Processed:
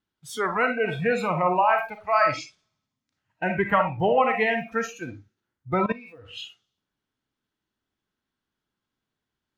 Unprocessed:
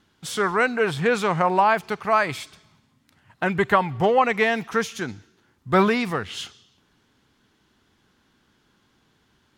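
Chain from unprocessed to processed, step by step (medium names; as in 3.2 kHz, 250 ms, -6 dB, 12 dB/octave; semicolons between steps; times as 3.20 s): 2.06–3.48 s: resonant low-pass 6.4 kHz, resonance Q 2.1; reverberation RT60 0.35 s, pre-delay 15 ms, DRR 3.5 dB; 5.74–6.34 s: level held to a coarse grid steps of 18 dB; spectral noise reduction 19 dB; trim -3 dB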